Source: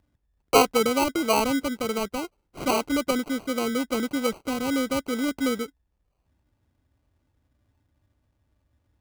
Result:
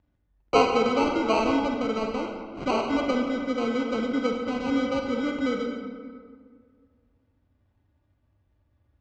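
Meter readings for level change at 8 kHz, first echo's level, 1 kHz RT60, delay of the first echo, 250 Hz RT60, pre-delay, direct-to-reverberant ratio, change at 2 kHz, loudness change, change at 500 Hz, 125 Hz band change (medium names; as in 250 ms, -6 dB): under -10 dB, no echo, 1.8 s, no echo, 2.1 s, 39 ms, 2.0 dB, -1.5 dB, -0.5 dB, +0.5 dB, +1.0 dB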